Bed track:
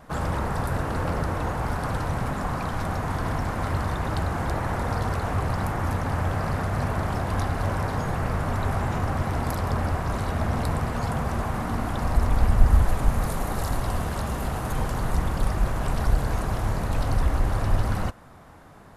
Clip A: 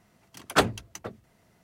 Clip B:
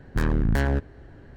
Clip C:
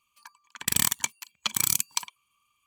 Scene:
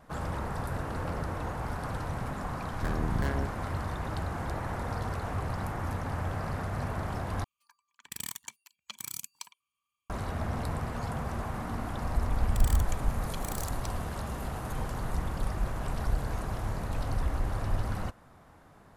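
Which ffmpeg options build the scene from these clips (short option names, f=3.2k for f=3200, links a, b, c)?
-filter_complex "[3:a]asplit=2[a][b];[0:a]volume=-7.5dB,asplit=2[c][d];[c]atrim=end=7.444[e];[a]atrim=end=2.66,asetpts=PTS-STARTPTS,volume=-15dB[f];[d]atrim=start=10.096[g];[2:a]atrim=end=1.36,asetpts=PTS-STARTPTS,volume=-8.5dB,afade=t=in:d=0.004:c=hsin,afade=t=out:st=1.356:d=0.004:c=hsin,adelay=2670[h];[b]atrim=end=2.66,asetpts=PTS-STARTPTS,volume=-17.5dB,afade=t=in:d=0.004:c=hsin,afade=t=out:st=2.656:d=0.004:c=hsin,adelay=11880[i];[e][f]acrossfade=d=0.004:c1=hsin:c2=hsin[j];[j][g]acrossfade=d=0.004:c1=hsin:c2=hsin[k];[k][h][i]amix=inputs=3:normalize=0"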